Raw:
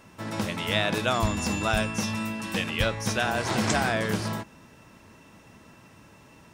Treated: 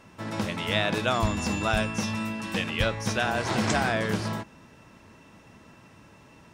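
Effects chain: high shelf 9500 Hz -9 dB

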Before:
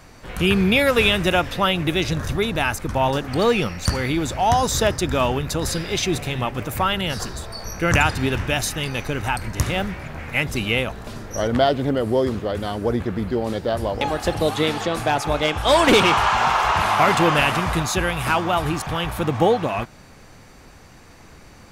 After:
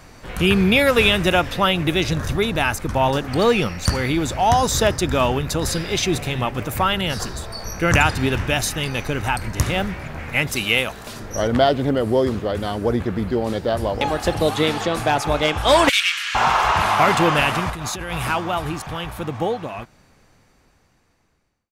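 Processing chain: ending faded out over 5.13 s; 10.47–11.2 tilt +2 dB/oct; 15.89–16.35 steep high-pass 1800 Hz 36 dB/oct; 17.7–18.27 negative-ratio compressor -29 dBFS, ratio -1; gain +1.5 dB

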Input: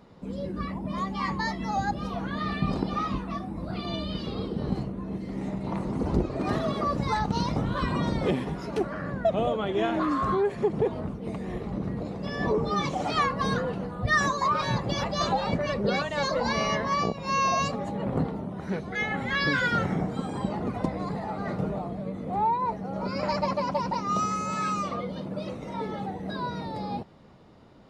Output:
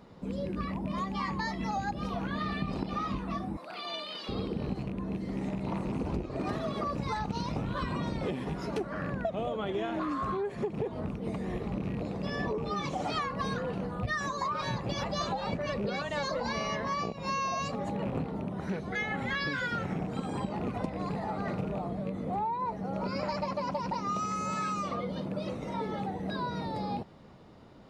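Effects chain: rattling part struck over -30 dBFS, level -36 dBFS; 3.57–4.29 HPF 710 Hz 12 dB/oct; compressor 10:1, threshold -29 dBFS, peak gain reduction 11 dB

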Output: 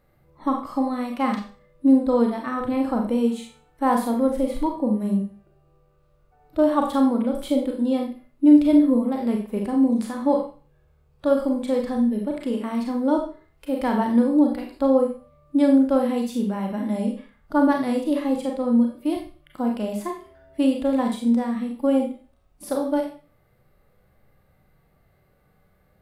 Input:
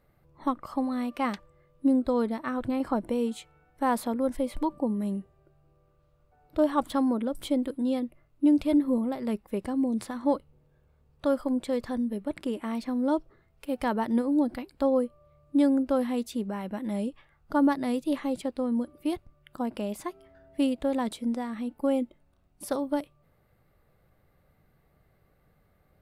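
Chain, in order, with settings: Schroeder reverb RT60 0.38 s, combs from 30 ms, DRR 2.5 dB; harmonic-percussive split percussive -7 dB; gain +4.5 dB

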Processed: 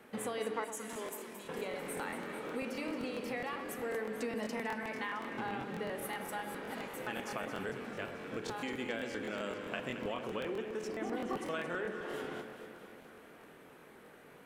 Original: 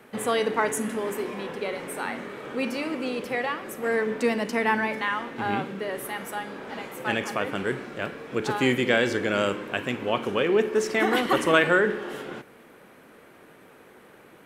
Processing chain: 0.64–1.49 pre-emphasis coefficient 0.8; 0.41–1.08 spectral gain 200–8300 Hz +7 dB; 10.88–11.37 tilt shelf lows +7.5 dB, about 1100 Hz; compressor 6:1, threshold -30 dBFS, peak gain reduction 17 dB; flange 0.47 Hz, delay 3.6 ms, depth 1.2 ms, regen -78%; echo with dull and thin repeats by turns 0.111 s, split 1100 Hz, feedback 81%, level -8 dB; crackling interface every 0.13 s, samples 1024, repeat, from 0.91; gain -1.5 dB

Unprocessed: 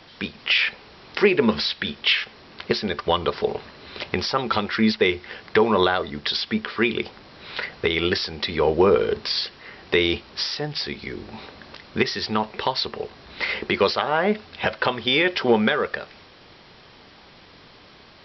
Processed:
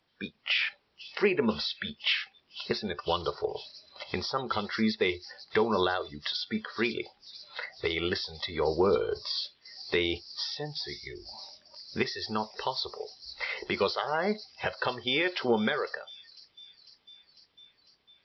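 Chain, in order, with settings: thin delay 0.5 s, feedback 81%, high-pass 4400 Hz, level -8 dB; spectral noise reduction 18 dB; gain -8 dB

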